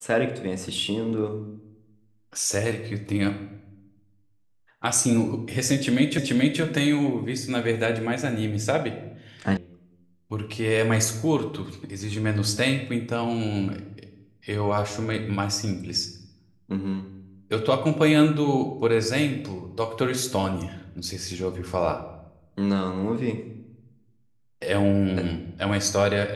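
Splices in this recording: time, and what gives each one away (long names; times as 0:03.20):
0:06.18: the same again, the last 0.43 s
0:09.57: cut off before it has died away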